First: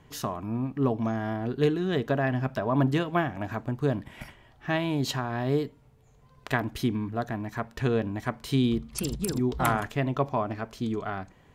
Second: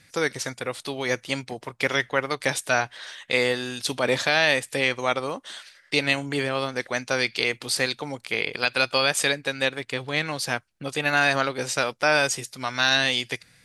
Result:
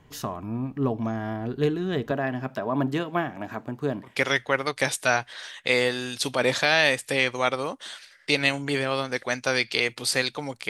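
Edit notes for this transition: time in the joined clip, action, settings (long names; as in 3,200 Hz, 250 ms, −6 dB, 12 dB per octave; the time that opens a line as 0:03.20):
first
0:02.11–0:04.19: high-pass filter 170 Hz 12 dB per octave
0:04.10: continue with second from 0:01.74, crossfade 0.18 s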